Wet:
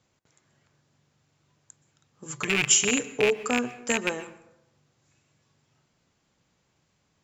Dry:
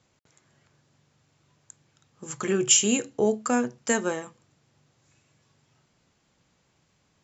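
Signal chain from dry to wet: rattle on loud lows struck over -30 dBFS, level -9 dBFS; 2.25–3.43 s: comb 6.8 ms, depth 74%; plate-style reverb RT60 0.87 s, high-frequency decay 0.5×, pre-delay 110 ms, DRR 16 dB; trim -3 dB

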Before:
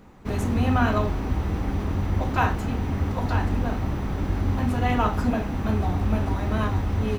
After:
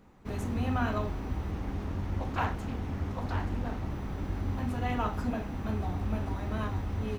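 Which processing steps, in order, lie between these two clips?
1.51–3.90 s: loudspeaker Doppler distortion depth 0.4 ms; trim -8.5 dB

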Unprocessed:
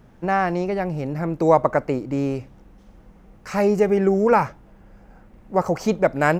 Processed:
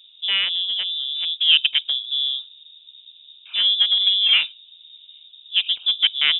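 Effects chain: local Wiener filter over 25 samples; peaking EQ 2.5 kHz -2 dB; frequency inversion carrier 3.7 kHz

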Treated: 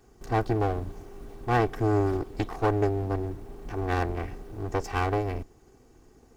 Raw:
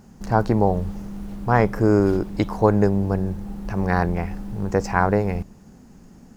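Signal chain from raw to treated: comb filter that takes the minimum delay 2.6 ms; trim -6.5 dB

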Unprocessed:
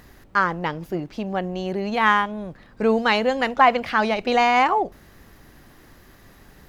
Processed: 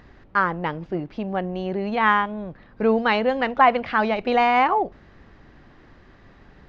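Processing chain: Gaussian low-pass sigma 2.1 samples

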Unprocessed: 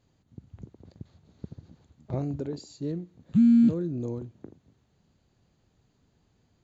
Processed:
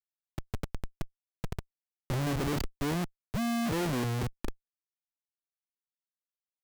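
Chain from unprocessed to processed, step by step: Schmitt trigger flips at -39.5 dBFS; 2.36–4.33 s: three bands expanded up and down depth 40%

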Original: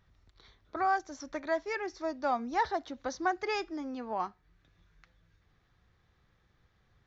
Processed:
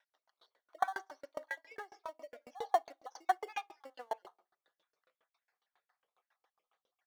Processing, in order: random holes in the spectrogram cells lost 52%; in parallel at -8 dB: sample-rate reducer 2.5 kHz, jitter 0%; on the sum: high-pass 630 Hz 24 dB/octave; treble shelf 5 kHz +6 dB; feedback delay 61 ms, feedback 54%, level -21 dB; on a send at -14.5 dB: reverberation RT60 0.55 s, pre-delay 4 ms; 1.79–2.44 s: on the sum: compression, threshold -40 dBFS, peak gain reduction 8 dB; tilt EQ -3.5 dB/octave; sawtooth tremolo in dB decaying 7.3 Hz, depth 34 dB; trim +5.5 dB

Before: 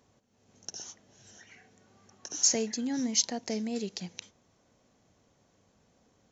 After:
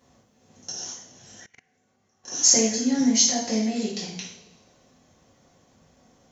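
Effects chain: two-slope reverb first 0.58 s, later 1.7 s, DRR -7.5 dB; 1.46–2.28 s: level held to a coarse grid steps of 23 dB

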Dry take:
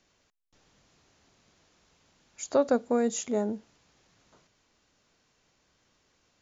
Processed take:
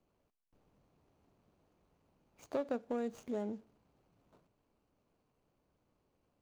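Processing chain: median filter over 25 samples; compression 2:1, threshold -35 dBFS, peak gain reduction 9 dB; on a send: reverberation RT60 1.0 s, pre-delay 6 ms, DRR 20.5 dB; on the sum: trim -4 dB

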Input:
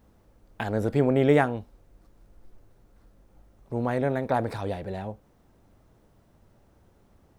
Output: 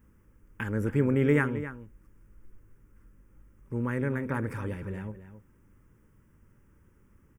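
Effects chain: static phaser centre 1.7 kHz, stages 4; echo from a far wall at 46 m, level -12 dB

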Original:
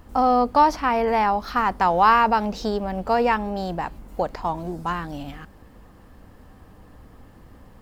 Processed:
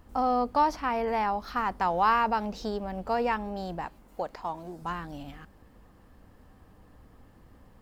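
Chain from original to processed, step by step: 3.87–4.82 s: bass shelf 200 Hz -9.5 dB; trim -7.5 dB

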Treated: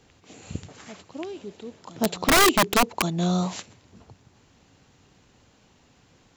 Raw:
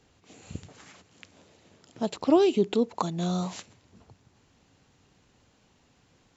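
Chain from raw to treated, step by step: reverse echo 1132 ms -20 dB; integer overflow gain 17 dB; trim +5 dB

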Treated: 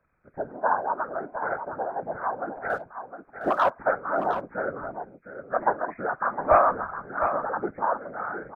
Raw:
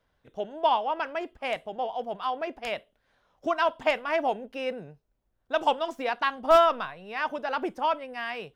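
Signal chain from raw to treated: knee-point frequency compression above 1.2 kHz 4:1; whisper effect; 2.70–3.70 s: waveshaping leveller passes 1; on a send: delay 710 ms -9 dB

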